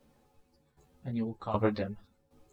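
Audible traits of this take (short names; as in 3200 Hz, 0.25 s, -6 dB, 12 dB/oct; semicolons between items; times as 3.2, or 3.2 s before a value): a quantiser's noise floor 12-bit, dither none; tremolo saw down 1.3 Hz, depth 80%; a shimmering, thickened sound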